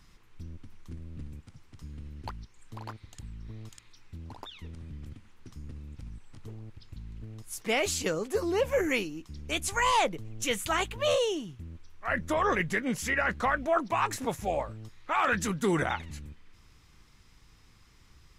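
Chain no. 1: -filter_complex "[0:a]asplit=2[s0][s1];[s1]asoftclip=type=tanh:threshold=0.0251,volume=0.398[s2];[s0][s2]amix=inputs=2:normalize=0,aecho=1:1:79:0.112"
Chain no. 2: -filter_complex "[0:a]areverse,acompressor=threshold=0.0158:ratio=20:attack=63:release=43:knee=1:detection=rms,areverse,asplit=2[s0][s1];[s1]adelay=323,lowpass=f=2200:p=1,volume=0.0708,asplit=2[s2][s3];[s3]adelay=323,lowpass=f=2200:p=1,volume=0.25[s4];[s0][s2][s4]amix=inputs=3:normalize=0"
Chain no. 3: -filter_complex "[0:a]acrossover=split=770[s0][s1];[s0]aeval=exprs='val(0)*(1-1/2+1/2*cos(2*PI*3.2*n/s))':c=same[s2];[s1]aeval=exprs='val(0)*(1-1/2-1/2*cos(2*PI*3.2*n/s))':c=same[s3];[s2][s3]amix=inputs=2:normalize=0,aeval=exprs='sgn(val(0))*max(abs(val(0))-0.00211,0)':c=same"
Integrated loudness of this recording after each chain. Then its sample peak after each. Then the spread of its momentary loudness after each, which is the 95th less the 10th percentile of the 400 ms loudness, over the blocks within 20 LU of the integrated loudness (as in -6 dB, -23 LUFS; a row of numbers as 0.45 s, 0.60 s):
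-28.0 LUFS, -38.0 LUFS, -34.5 LUFS; -14.5 dBFS, -19.5 dBFS, -17.5 dBFS; 19 LU, 13 LU, 21 LU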